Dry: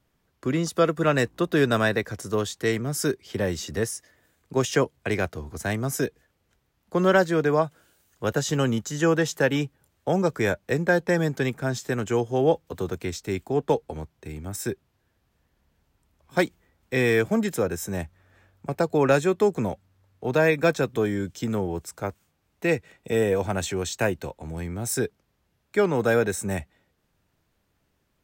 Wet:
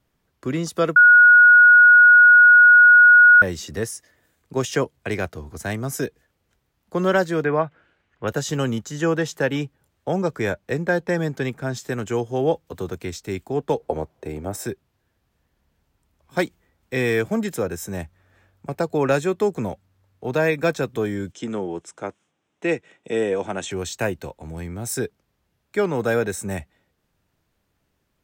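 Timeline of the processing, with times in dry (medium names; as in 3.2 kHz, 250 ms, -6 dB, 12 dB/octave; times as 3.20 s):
0.96–3.42 s: bleep 1.45 kHz -7 dBFS
7.44–8.28 s: resonant low-pass 2.2 kHz, resonance Q 1.7
8.78–11.77 s: treble shelf 6.3 kHz -5 dB
13.80–14.66 s: peaking EQ 570 Hz +13.5 dB 1.9 oct
21.32–23.71 s: cabinet simulation 190–8300 Hz, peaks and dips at 330 Hz +3 dB, 3.2 kHz +4 dB, 4.5 kHz -10 dB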